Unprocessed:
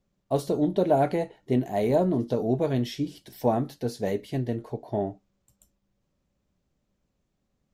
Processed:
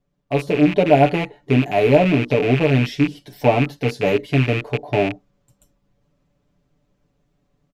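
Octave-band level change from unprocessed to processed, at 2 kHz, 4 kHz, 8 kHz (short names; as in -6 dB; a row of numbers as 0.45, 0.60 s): +19.5 dB, +12.5 dB, n/a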